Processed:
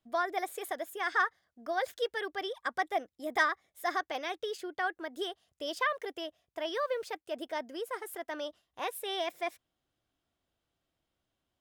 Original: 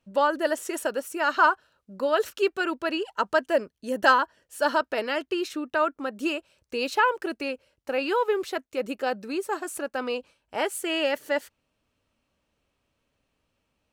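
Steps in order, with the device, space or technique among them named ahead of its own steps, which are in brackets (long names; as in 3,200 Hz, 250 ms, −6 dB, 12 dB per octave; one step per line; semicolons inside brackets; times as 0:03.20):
nightcore (speed change +20%)
level −8.5 dB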